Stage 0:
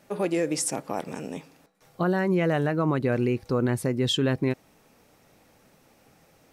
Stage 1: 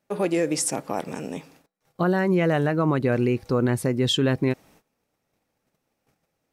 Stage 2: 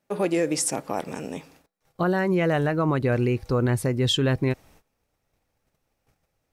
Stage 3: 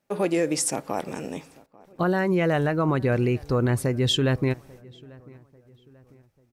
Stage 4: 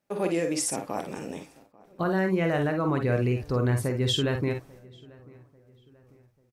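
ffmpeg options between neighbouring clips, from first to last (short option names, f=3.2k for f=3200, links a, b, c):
-af "agate=range=-20dB:threshold=-55dB:ratio=16:detection=peak,volume=2.5dB"
-af "asubboost=boost=5:cutoff=87"
-filter_complex "[0:a]asplit=2[a][b];[b]adelay=842,lowpass=f=2.1k:p=1,volume=-23.5dB,asplit=2[c][d];[d]adelay=842,lowpass=f=2.1k:p=1,volume=0.44,asplit=2[e][f];[f]adelay=842,lowpass=f=2.1k:p=1,volume=0.44[g];[a][c][e][g]amix=inputs=4:normalize=0"
-af "aecho=1:1:48|58:0.398|0.355,volume=-4dB"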